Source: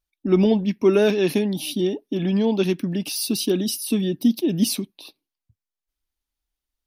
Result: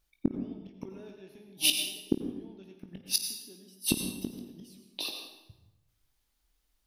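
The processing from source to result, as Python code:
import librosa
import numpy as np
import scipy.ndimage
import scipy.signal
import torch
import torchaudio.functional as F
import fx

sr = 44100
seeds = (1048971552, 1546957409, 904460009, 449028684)

p1 = fx.gate_flip(x, sr, shuts_db=-18.0, range_db=-40)
p2 = p1 + fx.room_early_taps(p1, sr, ms=(21, 53), db=(-9.5, -15.0), dry=0)
p3 = fx.rev_plate(p2, sr, seeds[0], rt60_s=1.0, hf_ratio=0.75, predelay_ms=75, drr_db=4.5)
y = p3 * librosa.db_to_amplitude(7.0)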